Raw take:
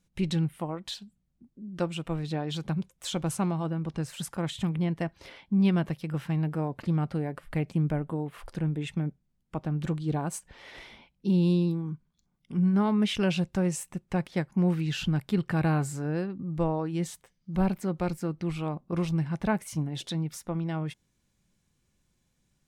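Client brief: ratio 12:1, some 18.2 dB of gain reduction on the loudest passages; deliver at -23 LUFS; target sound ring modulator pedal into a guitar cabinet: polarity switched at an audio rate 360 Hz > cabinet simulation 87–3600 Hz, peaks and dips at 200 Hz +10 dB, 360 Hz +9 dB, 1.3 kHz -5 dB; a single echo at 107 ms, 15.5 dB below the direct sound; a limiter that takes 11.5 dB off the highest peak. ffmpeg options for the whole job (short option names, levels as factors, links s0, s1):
-af "acompressor=threshold=0.0112:ratio=12,alimiter=level_in=4.47:limit=0.0631:level=0:latency=1,volume=0.224,aecho=1:1:107:0.168,aeval=exprs='val(0)*sgn(sin(2*PI*360*n/s))':c=same,highpass=87,equalizer=f=200:t=q:w=4:g=10,equalizer=f=360:t=q:w=4:g=9,equalizer=f=1300:t=q:w=4:g=-5,lowpass=f=3600:w=0.5412,lowpass=f=3600:w=1.3066,volume=8.91"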